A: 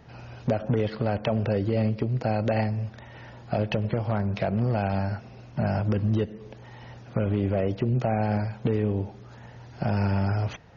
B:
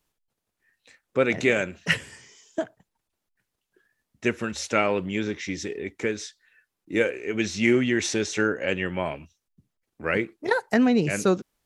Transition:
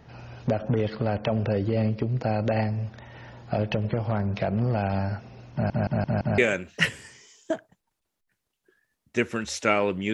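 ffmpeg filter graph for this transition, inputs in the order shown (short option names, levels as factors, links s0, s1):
-filter_complex "[0:a]apad=whole_dur=10.13,atrim=end=10.13,asplit=5[s0][s1][s2][s3][s4];[s0]atrim=end=5.702[s5];[s1]atrim=start=5.528:end=5.702[s6];[s2]atrim=start=5.528:end=5.702[s7];[s3]atrim=start=5.528:end=5.702[s8];[s4]atrim=start=5.528:end=5.702[s9];[1:a]atrim=start=1.458:end=5.21[s10];[s5][s6]acrossfade=d=0.004:c1=hsin:c2=hsin[s11];[s11][s7]acrossfade=d=0.004:c1=hsin:c2=hsin[s12];[s12][s8]acrossfade=d=0.004:c1=hsin:c2=hsin[s13];[s13][s9]acrossfade=d=0.004:c1=hsin:c2=hsin[s14];[s14][s10]acrossfade=d=0.004:c1=hsin:c2=hsin"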